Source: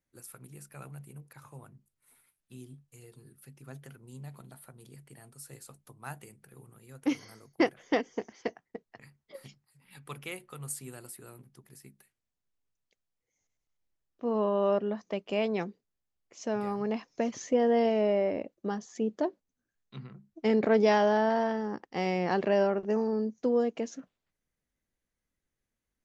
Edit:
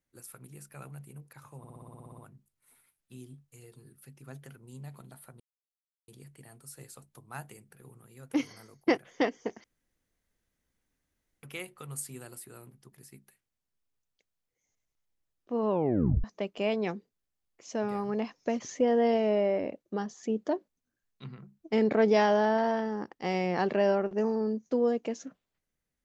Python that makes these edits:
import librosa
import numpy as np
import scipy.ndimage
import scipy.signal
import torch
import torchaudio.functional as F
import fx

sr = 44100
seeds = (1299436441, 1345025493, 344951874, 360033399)

y = fx.edit(x, sr, fx.stutter(start_s=1.58, slice_s=0.06, count=11),
    fx.insert_silence(at_s=4.8, length_s=0.68),
    fx.room_tone_fill(start_s=8.36, length_s=1.79),
    fx.tape_stop(start_s=14.42, length_s=0.54), tone=tone)